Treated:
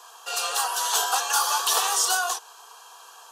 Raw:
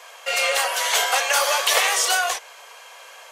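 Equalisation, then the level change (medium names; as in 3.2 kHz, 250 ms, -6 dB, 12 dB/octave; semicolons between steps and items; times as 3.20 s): bass shelf 160 Hz -8.5 dB; static phaser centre 570 Hz, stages 6; 0.0 dB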